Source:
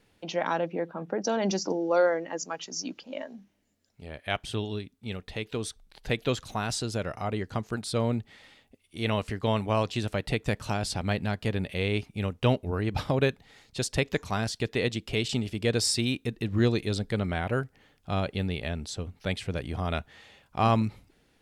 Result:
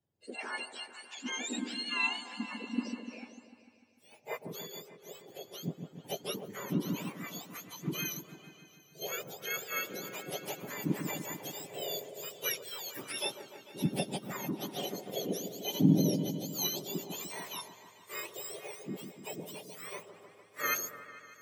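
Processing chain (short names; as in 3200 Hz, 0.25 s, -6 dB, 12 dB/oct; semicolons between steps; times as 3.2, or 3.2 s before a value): spectrum mirrored in octaves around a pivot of 1200 Hz; repeats that get brighter 0.149 s, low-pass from 750 Hz, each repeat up 1 oct, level -6 dB; three-band expander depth 40%; gain -7.5 dB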